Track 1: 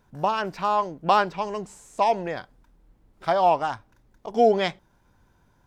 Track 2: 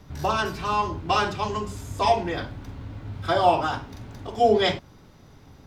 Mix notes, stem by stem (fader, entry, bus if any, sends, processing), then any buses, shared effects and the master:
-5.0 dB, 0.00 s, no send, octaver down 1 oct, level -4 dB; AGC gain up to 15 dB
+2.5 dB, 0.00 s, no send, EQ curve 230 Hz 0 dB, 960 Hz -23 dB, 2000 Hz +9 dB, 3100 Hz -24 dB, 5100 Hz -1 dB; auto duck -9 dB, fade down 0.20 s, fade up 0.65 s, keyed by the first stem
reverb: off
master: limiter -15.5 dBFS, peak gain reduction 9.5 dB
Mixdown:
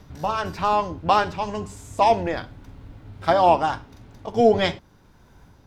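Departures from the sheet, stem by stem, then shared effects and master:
stem 2: missing EQ curve 230 Hz 0 dB, 960 Hz -23 dB, 2000 Hz +9 dB, 3100 Hz -24 dB, 5100 Hz -1 dB; master: missing limiter -15.5 dBFS, peak gain reduction 9.5 dB

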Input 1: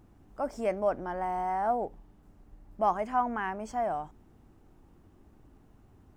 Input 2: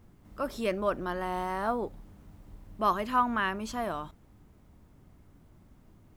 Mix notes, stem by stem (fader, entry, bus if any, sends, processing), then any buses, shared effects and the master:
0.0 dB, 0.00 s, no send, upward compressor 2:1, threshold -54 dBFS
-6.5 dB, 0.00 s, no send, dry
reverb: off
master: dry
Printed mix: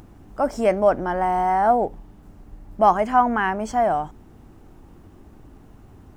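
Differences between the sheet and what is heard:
stem 1 0.0 dB -> +11.0 dB; stem 2 -6.5 dB -> -13.0 dB

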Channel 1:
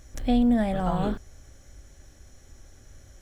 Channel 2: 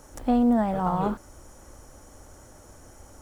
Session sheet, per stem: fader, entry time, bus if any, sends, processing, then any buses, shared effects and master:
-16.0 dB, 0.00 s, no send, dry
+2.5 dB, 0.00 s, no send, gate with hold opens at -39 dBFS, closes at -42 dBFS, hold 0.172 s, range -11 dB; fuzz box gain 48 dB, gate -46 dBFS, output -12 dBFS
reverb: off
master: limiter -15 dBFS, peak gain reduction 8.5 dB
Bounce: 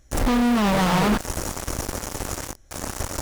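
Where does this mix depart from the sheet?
stem 1 -16.0 dB -> -5.5 dB; stem 2 +2.5 dB -> -4.5 dB

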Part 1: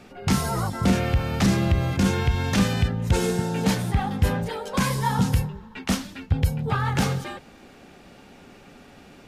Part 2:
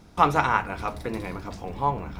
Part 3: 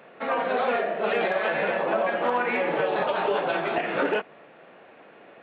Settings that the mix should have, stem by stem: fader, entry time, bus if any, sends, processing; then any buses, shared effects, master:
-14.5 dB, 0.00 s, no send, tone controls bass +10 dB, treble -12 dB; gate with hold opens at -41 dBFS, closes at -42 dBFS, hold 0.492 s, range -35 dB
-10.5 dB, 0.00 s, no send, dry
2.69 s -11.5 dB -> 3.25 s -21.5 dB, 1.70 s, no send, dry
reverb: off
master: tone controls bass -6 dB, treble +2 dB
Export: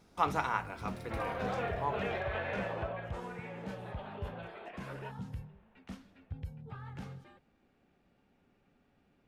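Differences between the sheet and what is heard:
stem 1 -14.5 dB -> -24.0 dB; stem 3: entry 1.70 s -> 0.90 s

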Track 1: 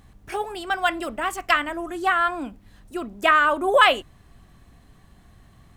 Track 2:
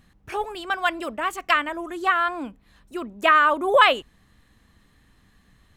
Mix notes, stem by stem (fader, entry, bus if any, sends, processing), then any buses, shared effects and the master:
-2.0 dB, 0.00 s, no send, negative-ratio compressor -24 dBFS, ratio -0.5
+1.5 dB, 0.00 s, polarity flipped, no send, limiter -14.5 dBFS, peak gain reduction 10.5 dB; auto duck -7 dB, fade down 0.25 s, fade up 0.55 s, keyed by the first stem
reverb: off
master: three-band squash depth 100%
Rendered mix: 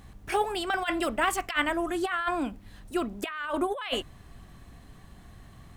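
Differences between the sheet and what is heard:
stem 2 +1.5 dB -> -7.0 dB; master: missing three-band squash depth 100%

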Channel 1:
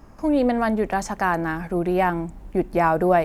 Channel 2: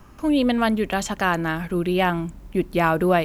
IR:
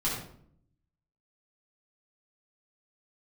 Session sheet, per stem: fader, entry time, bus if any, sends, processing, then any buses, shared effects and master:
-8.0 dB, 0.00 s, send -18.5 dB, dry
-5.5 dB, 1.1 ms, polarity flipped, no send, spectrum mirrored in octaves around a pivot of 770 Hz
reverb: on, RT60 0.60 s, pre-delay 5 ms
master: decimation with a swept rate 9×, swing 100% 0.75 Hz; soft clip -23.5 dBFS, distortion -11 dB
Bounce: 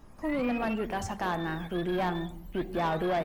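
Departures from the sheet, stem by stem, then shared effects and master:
stem 2 -5.5 dB -> -16.5 dB; master: missing decimation with a swept rate 9×, swing 100% 0.75 Hz

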